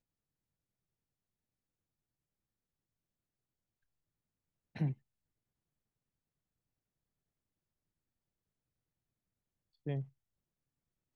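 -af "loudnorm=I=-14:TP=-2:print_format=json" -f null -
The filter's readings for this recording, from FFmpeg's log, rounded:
"input_i" : "-41.3",
"input_tp" : "-24.8",
"input_lra" : "2.5",
"input_thresh" : "-51.6",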